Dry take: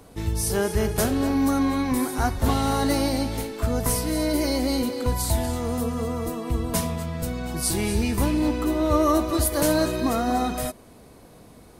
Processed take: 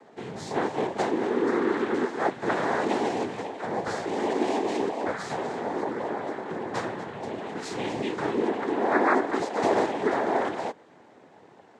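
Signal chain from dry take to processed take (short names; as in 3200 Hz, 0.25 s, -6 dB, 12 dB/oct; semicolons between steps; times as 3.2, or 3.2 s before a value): noise vocoder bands 6; three-band isolator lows -14 dB, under 270 Hz, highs -14 dB, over 3000 Hz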